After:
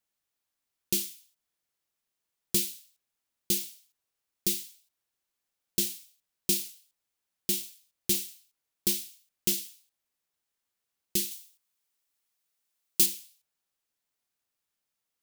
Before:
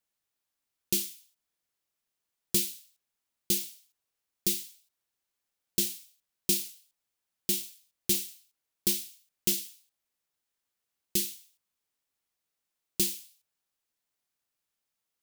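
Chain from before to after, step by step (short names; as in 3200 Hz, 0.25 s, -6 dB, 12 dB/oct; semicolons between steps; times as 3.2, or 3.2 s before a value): 11.31–13.06 tilt +1.5 dB/oct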